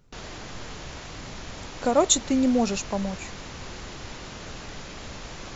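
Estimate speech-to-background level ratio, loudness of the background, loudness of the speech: 15.5 dB, −39.0 LKFS, −23.5 LKFS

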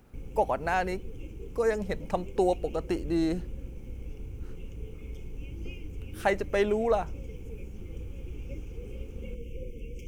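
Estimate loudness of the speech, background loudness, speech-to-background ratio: −29.5 LKFS, −43.0 LKFS, 13.5 dB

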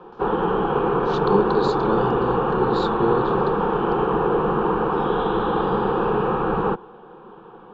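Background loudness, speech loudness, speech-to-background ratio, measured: −21.5 LKFS, −26.5 LKFS, −5.0 dB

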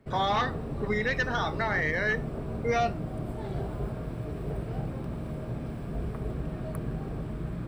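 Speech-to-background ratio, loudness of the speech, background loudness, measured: 6.0 dB, −29.5 LKFS, −35.5 LKFS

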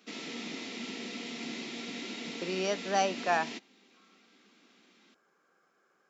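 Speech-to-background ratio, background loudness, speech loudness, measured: 7.5 dB, −39.5 LKFS, −32.0 LKFS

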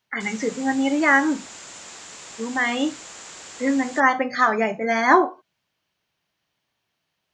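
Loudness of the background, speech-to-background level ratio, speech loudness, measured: −38.5 LKFS, 17.5 dB, −21.0 LKFS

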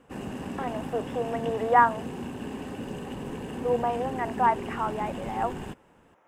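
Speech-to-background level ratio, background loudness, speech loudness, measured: 8.5 dB, −36.5 LKFS, −28.0 LKFS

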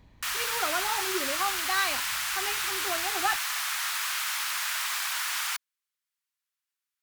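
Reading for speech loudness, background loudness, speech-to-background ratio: −33.0 LKFS, −28.5 LKFS, −4.5 dB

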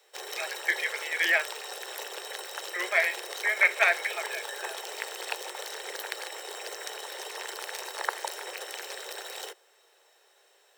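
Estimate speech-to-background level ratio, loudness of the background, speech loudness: 10.0 dB, −36.5 LKFS, −26.5 LKFS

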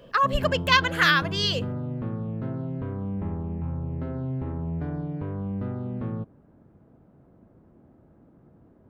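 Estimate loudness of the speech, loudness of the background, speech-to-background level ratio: −22.5 LKFS, −32.0 LKFS, 9.5 dB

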